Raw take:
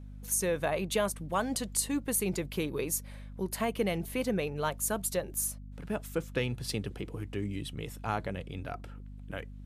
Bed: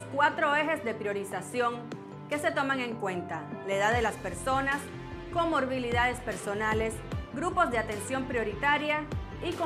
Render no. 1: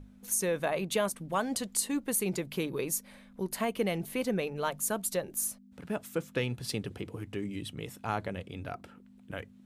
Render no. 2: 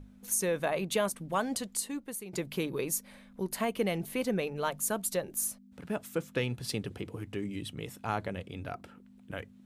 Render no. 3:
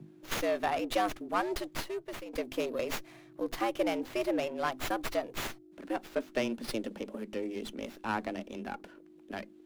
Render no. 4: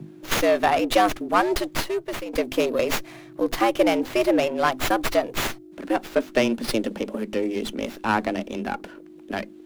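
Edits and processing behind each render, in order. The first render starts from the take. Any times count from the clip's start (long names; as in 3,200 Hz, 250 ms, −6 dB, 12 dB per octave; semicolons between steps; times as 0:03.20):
mains-hum notches 50/100/150 Hz
0:01.44–0:02.33: fade out, to −15.5 dB
frequency shifter +110 Hz; windowed peak hold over 5 samples
level +11 dB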